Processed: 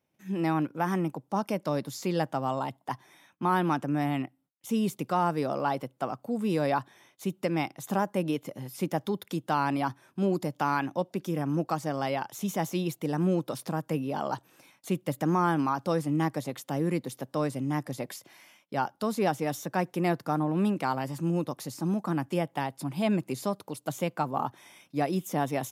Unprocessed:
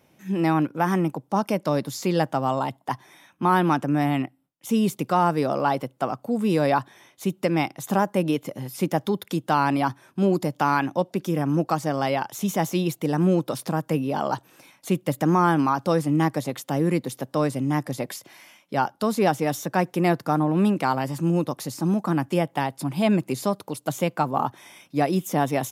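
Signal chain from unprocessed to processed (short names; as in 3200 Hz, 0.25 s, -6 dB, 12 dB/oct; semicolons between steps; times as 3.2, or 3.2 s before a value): gate -57 dBFS, range -13 dB; gain -6 dB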